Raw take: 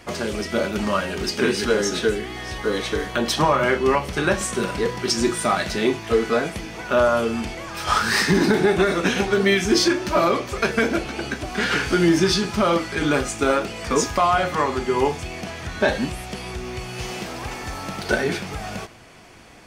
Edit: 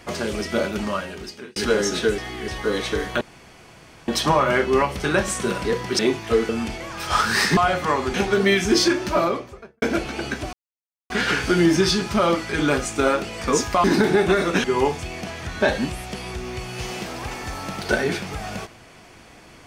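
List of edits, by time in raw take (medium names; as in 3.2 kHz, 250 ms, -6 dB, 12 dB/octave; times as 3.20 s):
0.60–1.56 s: fade out
2.18–2.48 s: reverse
3.21 s: insert room tone 0.87 s
5.12–5.79 s: delete
6.29–7.26 s: delete
8.34–9.14 s: swap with 14.27–14.84 s
10.02–10.82 s: studio fade out
11.53 s: insert silence 0.57 s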